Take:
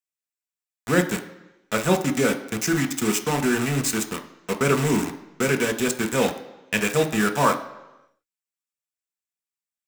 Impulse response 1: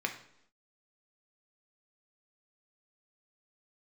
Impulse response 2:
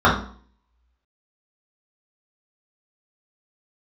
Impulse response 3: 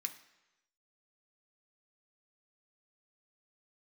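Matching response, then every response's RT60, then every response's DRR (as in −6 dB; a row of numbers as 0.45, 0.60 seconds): 3; 0.75, 0.50, 1.0 seconds; 3.5, −8.5, 4.5 decibels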